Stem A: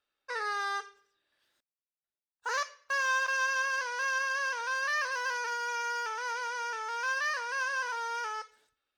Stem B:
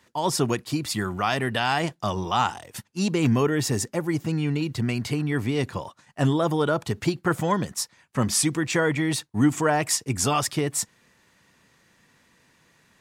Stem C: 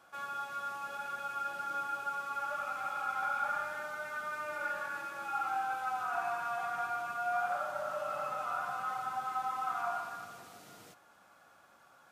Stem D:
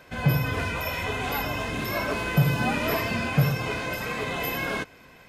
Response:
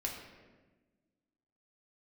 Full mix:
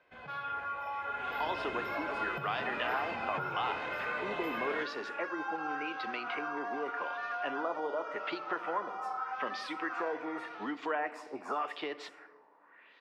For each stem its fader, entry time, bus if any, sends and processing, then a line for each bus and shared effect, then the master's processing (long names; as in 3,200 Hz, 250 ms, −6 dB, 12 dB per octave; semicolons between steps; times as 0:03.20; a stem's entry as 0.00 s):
−13.5 dB, 2.30 s, no bus, no send, no processing
+0.5 dB, 1.25 s, bus A, send −19.5 dB, Bessel high-pass filter 370 Hz, order 4
+1.5 dB, 0.15 s, bus A, no send, no processing
0:01.03 −15 dB → 0:01.42 −5 dB, 0.00 s, no bus, no send, downward compressor 5 to 1, threshold −28 dBFS, peak gain reduction 11.5 dB
bus A: 0.0 dB, auto-filter low-pass sine 0.86 Hz 870–4,600 Hz; downward compressor 6 to 1, threshold −34 dBFS, peak gain reduction 17.5 dB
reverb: on, RT60 1.3 s, pre-delay 3 ms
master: three-way crossover with the lows and the highs turned down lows −13 dB, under 320 Hz, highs −21 dB, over 3,600 Hz